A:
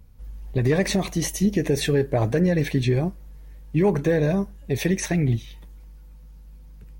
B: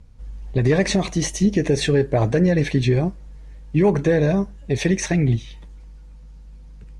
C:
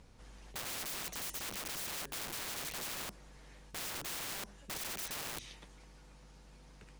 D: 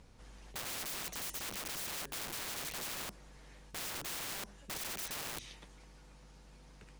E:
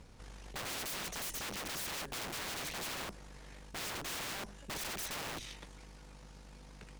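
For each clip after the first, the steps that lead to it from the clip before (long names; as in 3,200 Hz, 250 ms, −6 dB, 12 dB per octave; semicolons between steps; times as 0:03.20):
low-pass filter 8,600 Hz 24 dB per octave; level +3 dB
wrap-around overflow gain 24 dB; every bin compressed towards the loudest bin 2 to 1; level −2 dB
no processing that can be heard
tube saturation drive 44 dB, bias 0.7; level +7.5 dB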